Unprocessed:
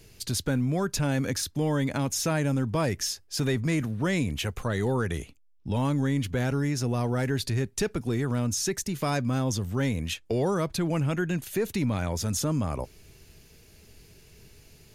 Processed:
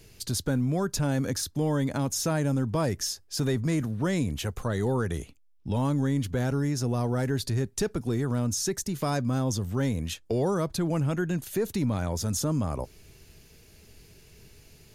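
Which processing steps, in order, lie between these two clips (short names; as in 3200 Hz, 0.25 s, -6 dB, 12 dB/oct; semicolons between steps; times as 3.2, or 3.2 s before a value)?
dynamic EQ 2400 Hz, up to -7 dB, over -49 dBFS, Q 1.4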